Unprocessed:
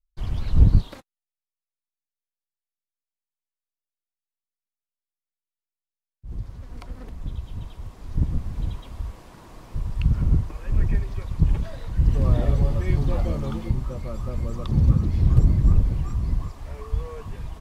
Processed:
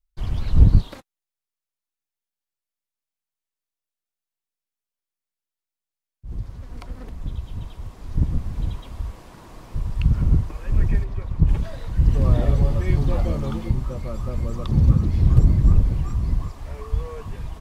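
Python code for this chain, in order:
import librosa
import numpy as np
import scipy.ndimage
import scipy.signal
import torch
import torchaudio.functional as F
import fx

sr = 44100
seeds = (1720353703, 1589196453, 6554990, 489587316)

y = fx.high_shelf(x, sr, hz=2900.0, db=-11.0, at=(11.03, 11.47), fade=0.02)
y = y * librosa.db_to_amplitude(2.0)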